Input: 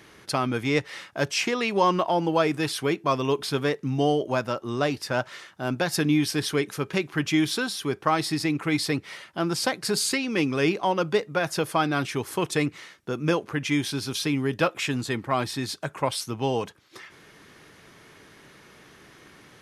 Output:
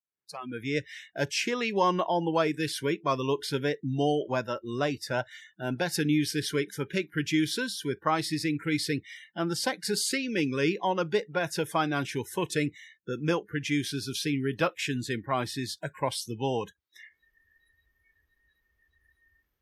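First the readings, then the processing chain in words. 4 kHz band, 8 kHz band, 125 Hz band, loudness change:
-3.5 dB, -3.5 dB, -4.0 dB, -3.5 dB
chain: fade-in on the opening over 0.98 s; spectral noise reduction 30 dB; trim -3.5 dB

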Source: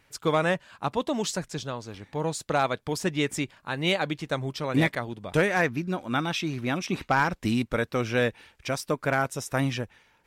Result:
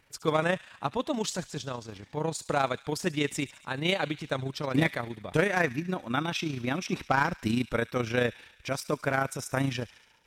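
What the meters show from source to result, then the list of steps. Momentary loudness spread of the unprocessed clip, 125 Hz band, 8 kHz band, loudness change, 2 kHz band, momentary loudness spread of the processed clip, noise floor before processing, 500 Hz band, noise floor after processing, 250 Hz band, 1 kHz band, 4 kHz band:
8 LU, -2.5 dB, -2.0 dB, -2.5 dB, -2.0 dB, 9 LU, -66 dBFS, -2.5 dB, -59 dBFS, -2.5 dB, -2.5 dB, -2.0 dB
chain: AM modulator 28 Hz, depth 35%; feedback echo behind a high-pass 70 ms, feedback 67%, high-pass 2.4 kHz, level -14.5 dB

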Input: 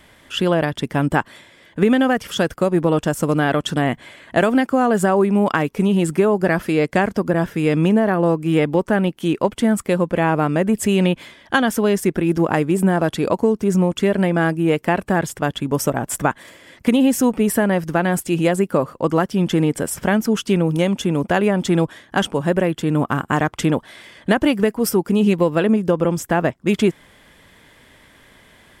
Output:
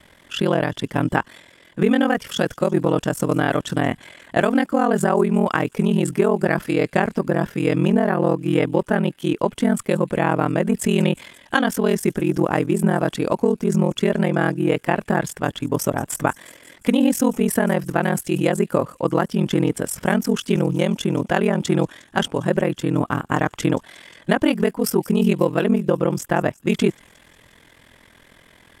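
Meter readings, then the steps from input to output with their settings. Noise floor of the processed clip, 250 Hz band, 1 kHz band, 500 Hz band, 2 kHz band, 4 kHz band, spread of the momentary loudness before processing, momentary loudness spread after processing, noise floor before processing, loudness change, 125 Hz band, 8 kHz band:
-53 dBFS, -2.0 dB, -2.0 dB, -2.0 dB, -2.0 dB, -2.0 dB, 5 LU, 5 LU, -51 dBFS, -2.0 dB, -1.5 dB, -2.0 dB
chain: feedback echo behind a high-pass 179 ms, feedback 68%, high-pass 5.6 kHz, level -17 dB; ring modulator 21 Hz; trim +1 dB

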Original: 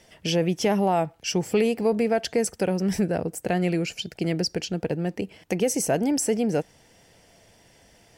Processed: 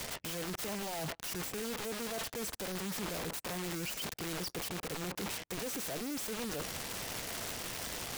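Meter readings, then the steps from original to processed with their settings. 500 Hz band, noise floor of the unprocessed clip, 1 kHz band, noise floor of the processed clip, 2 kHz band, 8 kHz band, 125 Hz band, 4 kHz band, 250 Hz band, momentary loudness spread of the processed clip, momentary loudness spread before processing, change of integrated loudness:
-17.0 dB, -57 dBFS, -12.5 dB, -53 dBFS, -6.5 dB, -7.0 dB, -15.0 dB, -6.5 dB, -16.5 dB, 1 LU, 7 LU, -12.5 dB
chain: spectral gate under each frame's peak -30 dB strong; treble shelf 9.3 kHz -9 dB; reverse; compression 20:1, threshold -34 dBFS, peak gain reduction 18 dB; reverse; waveshaping leveller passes 5; integer overflow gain 32.5 dB

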